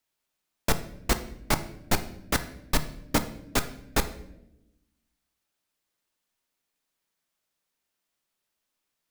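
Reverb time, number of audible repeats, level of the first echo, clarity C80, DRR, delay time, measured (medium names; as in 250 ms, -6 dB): 0.90 s, no echo, no echo, 16.5 dB, 8.5 dB, no echo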